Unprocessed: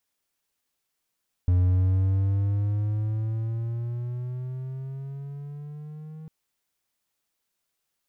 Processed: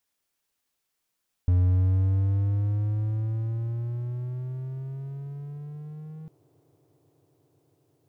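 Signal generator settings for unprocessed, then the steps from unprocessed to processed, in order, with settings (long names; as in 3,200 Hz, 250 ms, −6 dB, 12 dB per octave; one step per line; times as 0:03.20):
pitch glide with a swell triangle, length 4.80 s, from 88.9 Hz, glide +10 semitones, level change −21 dB, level −15 dB
delay with a band-pass on its return 494 ms, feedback 84%, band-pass 580 Hz, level −20 dB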